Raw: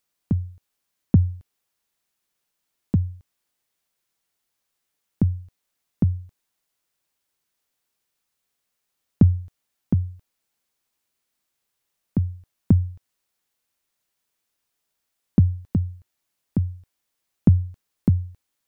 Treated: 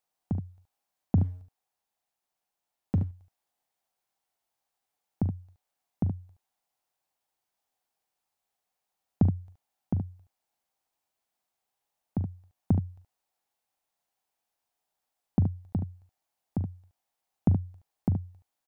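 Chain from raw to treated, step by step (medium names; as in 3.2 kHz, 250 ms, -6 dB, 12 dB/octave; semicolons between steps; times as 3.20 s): peaking EQ 770 Hz +13.5 dB 0.71 oct; 1.17–3.04 s: waveshaping leveller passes 1; early reflections 41 ms -14 dB, 73 ms -8 dB; trim -8.5 dB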